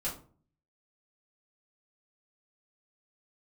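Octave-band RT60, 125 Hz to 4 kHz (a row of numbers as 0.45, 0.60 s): 0.75, 0.65, 0.50, 0.40, 0.30, 0.25 s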